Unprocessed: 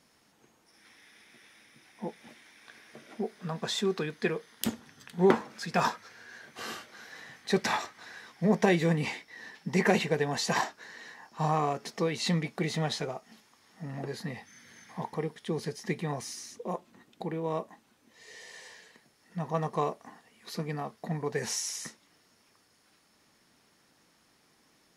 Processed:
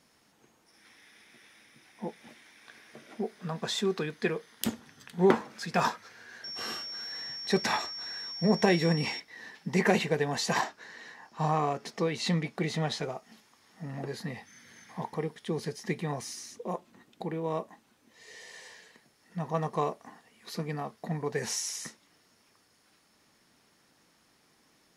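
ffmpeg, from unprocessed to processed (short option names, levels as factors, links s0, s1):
-filter_complex "[0:a]asettb=1/sr,asplit=3[s0][s1][s2];[s0]atrim=end=6.444[s3];[s1]atrim=start=6.44:end=9.2,asetpts=PTS-STARTPTS,afade=t=in:d=0.004:c=qsin,afade=t=out:st=2.756:d=0.004:c=qsin,aeval=exprs='val(0)+0.0141*sin(2*PI*5500*n/s)':c=same[s4];[s2]atrim=start=9.196[s5];[s3][s4]acrossfade=d=0.004:c1=hsin:c2=qsin[s6];[s6][s5]acrossfade=d=0.004:c1=qsin:c2=hsin,asettb=1/sr,asplit=3[s7][s8][s9];[s7]atrim=end=10.604[s10];[s8]atrim=start=10.6:end=13.03,asetpts=PTS-STARTPTS,afade=t=in:d=0.004:c=qsin,afade=t=out:st=2.426:d=0.004:c=qsin,highshelf=f=8900:g=-6[s11];[s9]atrim=start=13.026[s12];[s10][s11]acrossfade=d=0.004:c1=hsin:c2=qsin[s13];[s13][s12]acrossfade=d=0.004:c1=qsin:c2=hsin"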